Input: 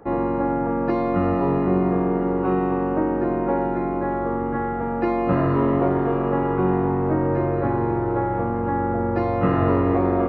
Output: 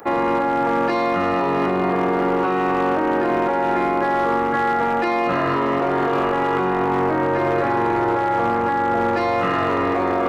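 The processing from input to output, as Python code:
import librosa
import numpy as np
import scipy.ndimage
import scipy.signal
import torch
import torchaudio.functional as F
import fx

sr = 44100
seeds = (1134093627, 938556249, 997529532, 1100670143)

p1 = fx.tilt_eq(x, sr, slope=4.5)
p2 = fx.over_compress(p1, sr, threshold_db=-28.0, ratio=-0.5)
p3 = p1 + (p2 * librosa.db_to_amplitude(2.0))
p4 = np.clip(p3, -10.0 ** (-15.0 / 20.0), 10.0 ** (-15.0 / 20.0))
y = p4 * librosa.db_to_amplitude(1.5)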